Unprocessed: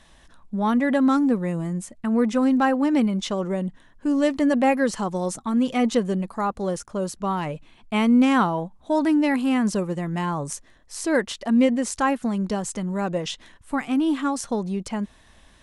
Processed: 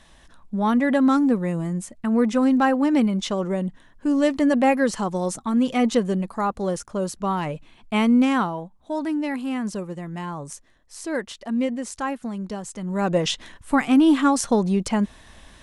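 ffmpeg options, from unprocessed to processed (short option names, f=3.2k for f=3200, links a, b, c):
-af "volume=12.5dB,afade=t=out:st=8:d=0.62:silence=0.473151,afade=t=in:st=12.77:d=0.44:silence=0.266073"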